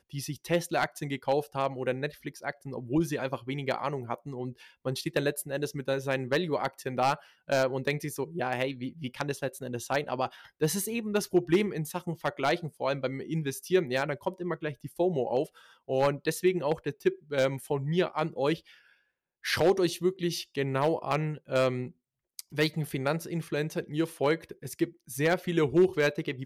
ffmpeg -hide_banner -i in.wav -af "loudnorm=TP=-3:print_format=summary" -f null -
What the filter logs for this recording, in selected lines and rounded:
Input Integrated:    -30.1 LUFS
Input True Peak:     -13.7 dBTP
Input LRA:             3.4 LU
Input Threshold:     -40.3 LUFS